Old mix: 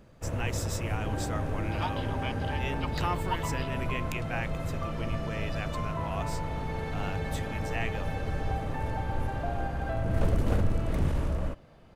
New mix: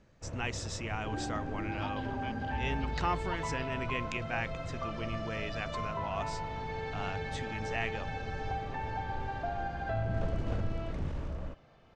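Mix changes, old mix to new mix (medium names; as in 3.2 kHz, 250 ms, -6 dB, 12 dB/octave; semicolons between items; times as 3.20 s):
first sound -8.5 dB; master: add low-pass 6.7 kHz 24 dB/octave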